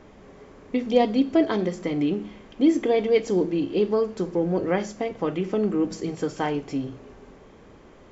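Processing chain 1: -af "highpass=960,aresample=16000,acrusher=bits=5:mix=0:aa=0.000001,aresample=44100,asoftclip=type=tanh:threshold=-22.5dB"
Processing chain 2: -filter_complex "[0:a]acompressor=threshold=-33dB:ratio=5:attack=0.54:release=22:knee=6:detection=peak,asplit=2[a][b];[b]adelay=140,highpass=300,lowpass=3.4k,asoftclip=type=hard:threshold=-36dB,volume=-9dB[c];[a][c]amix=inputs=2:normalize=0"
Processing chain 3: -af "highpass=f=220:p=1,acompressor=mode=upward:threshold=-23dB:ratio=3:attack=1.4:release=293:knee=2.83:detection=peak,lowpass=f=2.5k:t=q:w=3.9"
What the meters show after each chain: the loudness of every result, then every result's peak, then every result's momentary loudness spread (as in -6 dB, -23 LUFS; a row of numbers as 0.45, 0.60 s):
-36.5, -36.0, -26.0 LUFS; -22.5, -25.5, -5.5 dBFS; 9, 13, 13 LU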